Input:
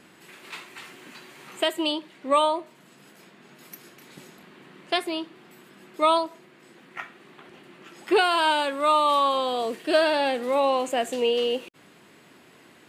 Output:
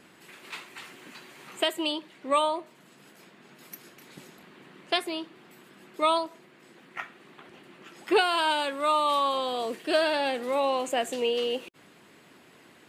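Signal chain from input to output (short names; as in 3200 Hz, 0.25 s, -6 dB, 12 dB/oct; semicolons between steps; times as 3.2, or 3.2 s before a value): harmonic-percussive split harmonic -4 dB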